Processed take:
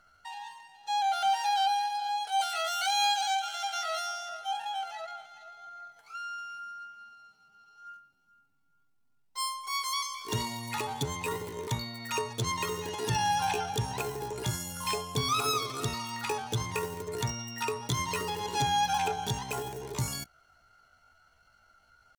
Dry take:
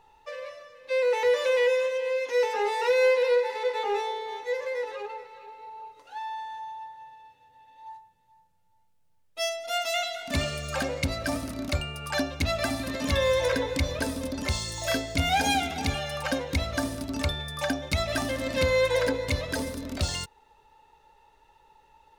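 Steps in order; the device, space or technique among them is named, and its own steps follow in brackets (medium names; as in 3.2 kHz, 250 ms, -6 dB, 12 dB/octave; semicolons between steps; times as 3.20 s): 2.41–4.29 s: tilt shelf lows -7 dB, about 920 Hz; chipmunk voice (pitch shift +8 st); trim -4 dB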